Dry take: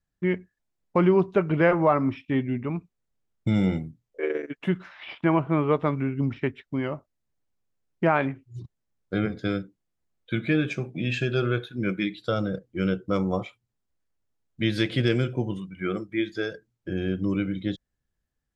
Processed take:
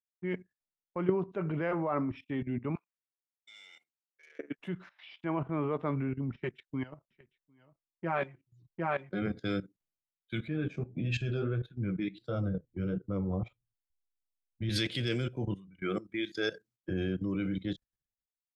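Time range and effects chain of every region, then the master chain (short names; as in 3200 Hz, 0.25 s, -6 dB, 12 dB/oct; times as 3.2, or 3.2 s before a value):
2.75–4.39 HPF 1200 Hz + level quantiser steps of 9 dB + overdrive pedal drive 15 dB, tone 4200 Hz, clips at -24.5 dBFS
6.35–9.22 flange 1.1 Hz, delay 5.1 ms, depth 1.7 ms, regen +1% + echo 0.754 s -5.5 dB
10.47–14.69 tilt -2.5 dB/oct + flange 1.6 Hz, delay 5.5 ms, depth 7.5 ms, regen +41%
whole clip: level quantiser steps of 16 dB; three-band expander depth 100%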